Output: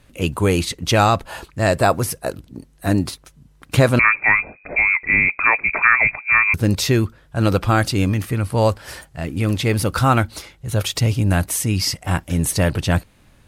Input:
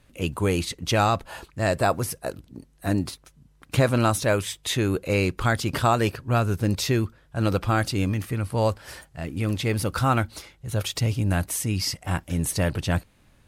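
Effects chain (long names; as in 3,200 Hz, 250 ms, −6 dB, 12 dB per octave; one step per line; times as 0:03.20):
0:03.99–0:06.54: voice inversion scrambler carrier 2,500 Hz
level +6 dB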